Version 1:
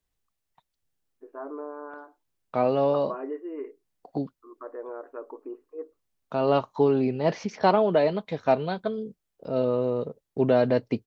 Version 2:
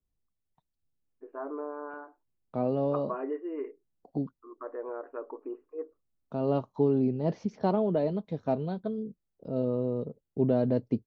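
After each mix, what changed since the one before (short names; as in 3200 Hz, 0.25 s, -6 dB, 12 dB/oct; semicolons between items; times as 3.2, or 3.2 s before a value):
second voice: add EQ curve 230 Hz 0 dB, 2300 Hz -18 dB, 3300 Hz -14 dB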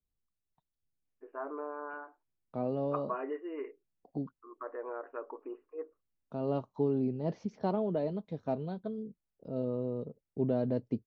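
first voice: add tilt +3 dB/oct; second voice -5.0 dB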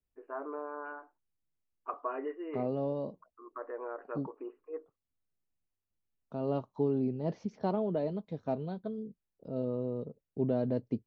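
first voice: entry -1.05 s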